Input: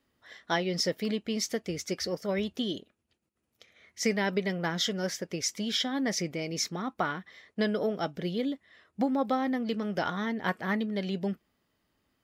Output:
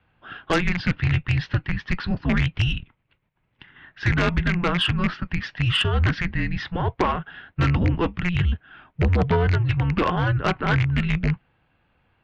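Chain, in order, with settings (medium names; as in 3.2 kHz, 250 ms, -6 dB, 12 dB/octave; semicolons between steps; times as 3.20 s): rattle on loud lows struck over -32 dBFS, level -25 dBFS; mistuned SSB -350 Hz 170–3500 Hz; Chebyshev shaper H 2 -9 dB, 5 -8 dB, 8 -29 dB, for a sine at -14.5 dBFS; trim +2.5 dB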